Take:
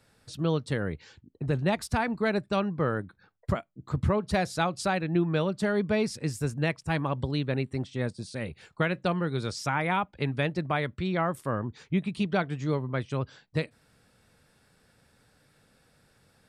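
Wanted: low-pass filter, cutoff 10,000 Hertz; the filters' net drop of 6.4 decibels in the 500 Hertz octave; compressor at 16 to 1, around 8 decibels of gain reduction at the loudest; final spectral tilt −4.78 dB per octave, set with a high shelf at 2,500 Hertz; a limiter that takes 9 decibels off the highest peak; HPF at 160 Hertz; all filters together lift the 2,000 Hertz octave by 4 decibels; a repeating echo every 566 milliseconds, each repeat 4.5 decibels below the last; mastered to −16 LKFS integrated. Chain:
high-pass filter 160 Hz
low-pass filter 10,000 Hz
parametric band 500 Hz −8.5 dB
parametric band 2,000 Hz +7.5 dB
high-shelf EQ 2,500 Hz −4 dB
downward compressor 16 to 1, threshold −30 dBFS
brickwall limiter −26 dBFS
repeating echo 566 ms, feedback 60%, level −4.5 dB
level +21 dB

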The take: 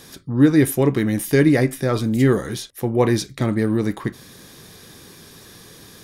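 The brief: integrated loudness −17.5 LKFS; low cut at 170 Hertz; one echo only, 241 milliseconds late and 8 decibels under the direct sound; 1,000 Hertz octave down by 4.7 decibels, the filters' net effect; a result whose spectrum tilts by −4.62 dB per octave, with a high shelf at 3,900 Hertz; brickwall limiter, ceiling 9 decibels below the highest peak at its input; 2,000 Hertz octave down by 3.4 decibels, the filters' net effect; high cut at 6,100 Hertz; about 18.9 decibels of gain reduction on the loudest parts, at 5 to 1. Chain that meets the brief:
high-pass filter 170 Hz
low-pass filter 6,100 Hz
parametric band 1,000 Hz −6 dB
parametric band 2,000 Hz −3.5 dB
high-shelf EQ 3,900 Hz +6.5 dB
downward compressor 5 to 1, threshold −33 dBFS
brickwall limiter −27.5 dBFS
single-tap delay 241 ms −8 dB
level +20.5 dB

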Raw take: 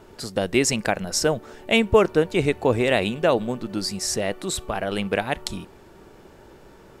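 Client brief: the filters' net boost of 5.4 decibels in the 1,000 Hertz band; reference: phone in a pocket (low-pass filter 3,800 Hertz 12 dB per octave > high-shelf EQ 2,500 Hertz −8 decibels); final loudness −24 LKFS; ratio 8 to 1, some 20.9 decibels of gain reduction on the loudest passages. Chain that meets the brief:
parametric band 1,000 Hz +8.5 dB
downward compressor 8 to 1, threshold −30 dBFS
low-pass filter 3,800 Hz 12 dB per octave
high-shelf EQ 2,500 Hz −8 dB
level +12.5 dB

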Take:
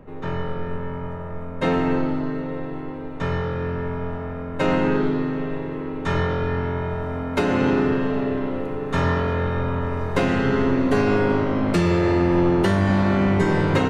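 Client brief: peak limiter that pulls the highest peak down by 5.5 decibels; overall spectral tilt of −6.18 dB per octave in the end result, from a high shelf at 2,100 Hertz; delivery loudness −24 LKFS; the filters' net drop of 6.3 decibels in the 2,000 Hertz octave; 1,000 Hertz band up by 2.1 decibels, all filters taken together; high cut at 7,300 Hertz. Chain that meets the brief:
low-pass filter 7,300 Hz
parametric band 1,000 Hz +5.5 dB
parametric band 2,000 Hz −9 dB
high-shelf EQ 2,100 Hz −3.5 dB
level −0.5 dB
brickwall limiter −12 dBFS

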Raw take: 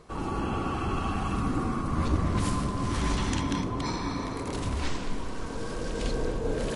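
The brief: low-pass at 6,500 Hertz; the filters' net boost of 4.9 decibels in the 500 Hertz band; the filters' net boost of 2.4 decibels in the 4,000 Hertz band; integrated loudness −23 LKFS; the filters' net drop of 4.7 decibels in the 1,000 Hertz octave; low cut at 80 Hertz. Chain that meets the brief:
high-pass filter 80 Hz
low-pass filter 6,500 Hz
parametric band 500 Hz +7.5 dB
parametric band 1,000 Hz −8 dB
parametric band 4,000 Hz +4 dB
level +7.5 dB

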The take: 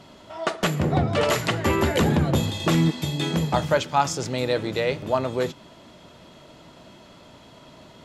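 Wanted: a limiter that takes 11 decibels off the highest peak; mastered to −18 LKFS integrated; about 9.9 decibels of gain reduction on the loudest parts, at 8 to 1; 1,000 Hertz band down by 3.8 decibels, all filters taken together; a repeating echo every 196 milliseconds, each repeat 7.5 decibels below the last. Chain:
parametric band 1,000 Hz −5 dB
downward compressor 8 to 1, threshold −27 dBFS
brickwall limiter −26.5 dBFS
repeating echo 196 ms, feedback 42%, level −7.5 dB
level +17 dB

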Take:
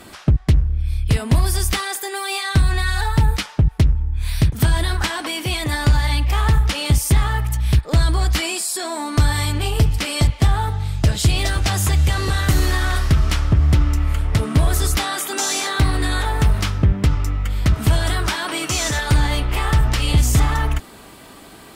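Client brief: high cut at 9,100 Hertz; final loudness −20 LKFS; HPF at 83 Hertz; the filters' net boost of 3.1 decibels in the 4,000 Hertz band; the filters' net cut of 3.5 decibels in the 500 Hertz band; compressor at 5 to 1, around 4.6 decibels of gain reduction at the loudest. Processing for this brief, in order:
high-pass filter 83 Hz
low-pass filter 9,100 Hz
parametric band 500 Hz −5 dB
parametric band 4,000 Hz +4 dB
downward compressor 5 to 1, threshold −17 dBFS
level +3 dB

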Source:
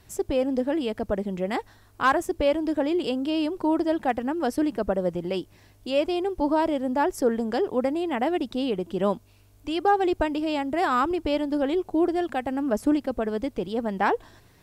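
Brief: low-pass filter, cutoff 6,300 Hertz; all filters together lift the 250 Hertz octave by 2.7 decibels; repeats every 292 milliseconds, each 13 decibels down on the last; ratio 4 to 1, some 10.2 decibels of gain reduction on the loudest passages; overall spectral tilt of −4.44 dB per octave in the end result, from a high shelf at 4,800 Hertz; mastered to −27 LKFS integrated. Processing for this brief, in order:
low-pass filter 6,300 Hz
parametric band 250 Hz +3.5 dB
high-shelf EQ 4,800 Hz +7.5 dB
downward compressor 4 to 1, threshold −28 dBFS
repeating echo 292 ms, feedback 22%, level −13 dB
level +4.5 dB

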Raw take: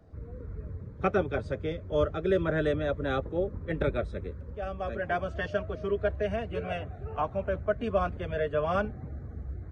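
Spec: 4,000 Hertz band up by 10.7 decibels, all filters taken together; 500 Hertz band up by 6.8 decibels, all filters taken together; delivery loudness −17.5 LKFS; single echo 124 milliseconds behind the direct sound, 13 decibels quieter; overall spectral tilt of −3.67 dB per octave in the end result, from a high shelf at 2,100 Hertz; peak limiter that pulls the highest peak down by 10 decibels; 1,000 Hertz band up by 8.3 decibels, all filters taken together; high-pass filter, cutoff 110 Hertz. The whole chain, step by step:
high-pass filter 110 Hz
parametric band 500 Hz +5.5 dB
parametric band 1,000 Hz +8 dB
high-shelf EQ 2,100 Hz +5.5 dB
parametric band 4,000 Hz +8 dB
brickwall limiter −17 dBFS
single-tap delay 124 ms −13 dB
level +10.5 dB

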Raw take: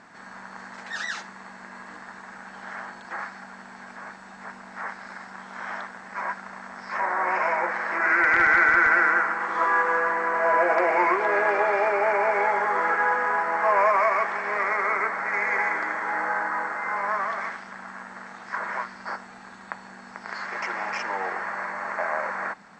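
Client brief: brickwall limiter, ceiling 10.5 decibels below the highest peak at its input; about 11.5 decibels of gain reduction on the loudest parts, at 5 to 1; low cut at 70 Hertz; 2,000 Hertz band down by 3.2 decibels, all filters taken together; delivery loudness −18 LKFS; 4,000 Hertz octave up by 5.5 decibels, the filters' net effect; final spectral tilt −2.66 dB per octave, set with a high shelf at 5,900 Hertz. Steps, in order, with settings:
high-pass filter 70 Hz
parametric band 2,000 Hz −6 dB
parametric band 4,000 Hz +7 dB
high-shelf EQ 5,900 Hz +4 dB
downward compressor 5 to 1, threshold −31 dBFS
level +18.5 dB
brickwall limiter −7.5 dBFS

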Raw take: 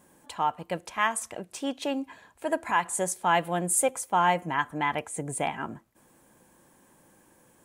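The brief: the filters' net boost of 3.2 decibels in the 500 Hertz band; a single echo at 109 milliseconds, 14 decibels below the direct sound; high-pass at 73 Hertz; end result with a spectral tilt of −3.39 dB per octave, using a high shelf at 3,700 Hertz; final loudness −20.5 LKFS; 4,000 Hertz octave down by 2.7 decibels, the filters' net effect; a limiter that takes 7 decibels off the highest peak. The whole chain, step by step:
high-pass filter 73 Hz
parametric band 500 Hz +4 dB
high-shelf EQ 3,700 Hz +5 dB
parametric band 4,000 Hz −7.5 dB
brickwall limiter −15.5 dBFS
single-tap delay 109 ms −14 dB
level +8 dB

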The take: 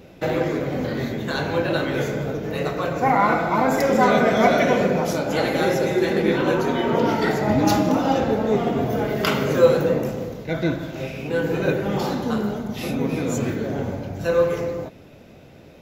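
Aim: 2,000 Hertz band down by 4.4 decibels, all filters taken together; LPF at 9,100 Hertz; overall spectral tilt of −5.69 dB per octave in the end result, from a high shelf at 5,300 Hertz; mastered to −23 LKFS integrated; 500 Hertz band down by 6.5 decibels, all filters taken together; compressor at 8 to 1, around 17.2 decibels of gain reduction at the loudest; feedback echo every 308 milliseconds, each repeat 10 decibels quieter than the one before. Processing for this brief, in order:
low-pass filter 9,100 Hz
parametric band 500 Hz −7.5 dB
parametric band 2,000 Hz −5 dB
high-shelf EQ 5,300 Hz −4 dB
downward compressor 8 to 1, threshold −35 dBFS
repeating echo 308 ms, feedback 32%, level −10 dB
level +15 dB

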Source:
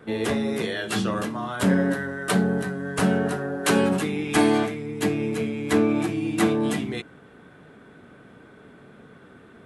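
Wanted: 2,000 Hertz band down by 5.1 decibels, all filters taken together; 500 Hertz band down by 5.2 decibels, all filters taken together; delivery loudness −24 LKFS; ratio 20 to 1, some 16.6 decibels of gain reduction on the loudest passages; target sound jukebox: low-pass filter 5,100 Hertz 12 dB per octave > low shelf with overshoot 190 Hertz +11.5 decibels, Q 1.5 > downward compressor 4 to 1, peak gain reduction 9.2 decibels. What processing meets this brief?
parametric band 500 Hz −4 dB
parametric band 2,000 Hz −6.5 dB
downward compressor 20 to 1, threshold −33 dBFS
low-pass filter 5,100 Hz 12 dB per octave
low shelf with overshoot 190 Hz +11.5 dB, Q 1.5
downward compressor 4 to 1, threshold −35 dBFS
level +15.5 dB

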